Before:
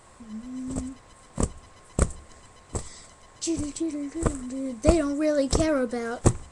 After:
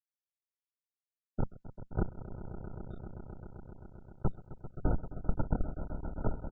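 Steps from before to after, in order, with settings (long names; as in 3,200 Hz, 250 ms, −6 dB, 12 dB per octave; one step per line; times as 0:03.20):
low-shelf EQ 130 Hz +4.5 dB
comparator with hysteresis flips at −15 dBFS
pitch-shifted copies added −12 semitones −4 dB, −3 semitones −7 dB
downward compressor 16 to 1, threshold −25 dBFS, peak gain reduction 7 dB
on a send: echo that builds up and dies away 131 ms, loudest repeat 5, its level −13.5 dB
on the sum: level +2 dB
MP2 8 kbit/s 16,000 Hz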